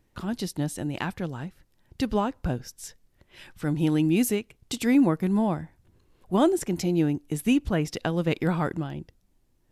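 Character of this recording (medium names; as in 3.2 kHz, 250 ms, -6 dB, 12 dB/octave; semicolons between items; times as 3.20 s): noise floor -67 dBFS; spectral tilt -6.5 dB/octave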